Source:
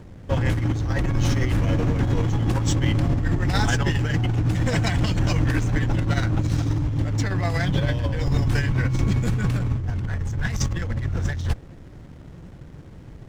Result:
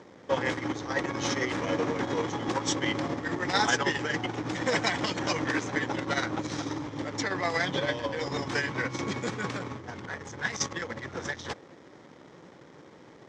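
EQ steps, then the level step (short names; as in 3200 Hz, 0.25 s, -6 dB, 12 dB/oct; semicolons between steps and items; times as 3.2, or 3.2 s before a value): speaker cabinet 430–6400 Hz, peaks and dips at 680 Hz -5 dB, 1500 Hz -4 dB, 2700 Hz -7 dB, 4400 Hz -4 dB; +3.5 dB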